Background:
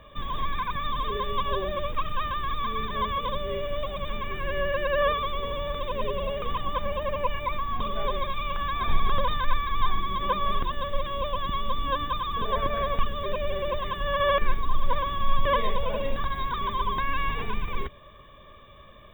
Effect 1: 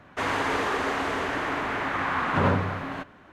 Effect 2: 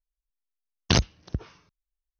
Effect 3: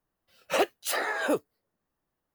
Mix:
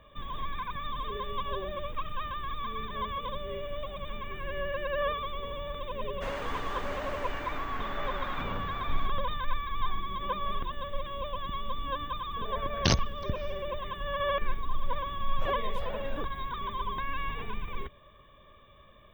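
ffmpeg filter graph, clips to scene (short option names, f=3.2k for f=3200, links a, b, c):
-filter_complex "[0:a]volume=-6.5dB[a];[1:a]alimiter=limit=-16.5dB:level=0:latency=1:release=157[b];[3:a]lowpass=f=1k:p=1[c];[b]atrim=end=3.32,asetpts=PTS-STARTPTS,volume=-11.5dB,afade=t=in:d=0.004:c=hsin,afade=t=out:st=3.316:d=0.004:c=hsin,adelay=6040[d];[2:a]atrim=end=2.19,asetpts=PTS-STARTPTS,volume=-4dB,afade=t=in:d=0.004:c=hsin,afade=t=out:st=2.186:d=0.004:c=hsin,adelay=11950[e];[c]atrim=end=2.34,asetpts=PTS-STARTPTS,volume=-13dB,afade=t=in:d=0.004:c=hsin,afade=t=out:st=2.336:d=0.004:c=hsin,adelay=14880[f];[a][d][e][f]amix=inputs=4:normalize=0"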